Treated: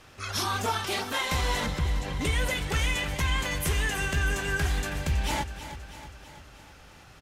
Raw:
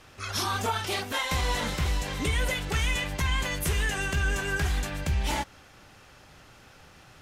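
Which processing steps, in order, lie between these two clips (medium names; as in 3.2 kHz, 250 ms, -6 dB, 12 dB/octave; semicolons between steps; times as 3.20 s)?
1.66–2.21 s: resonances exaggerated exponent 1.5; feedback delay 323 ms, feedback 58%, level -12 dB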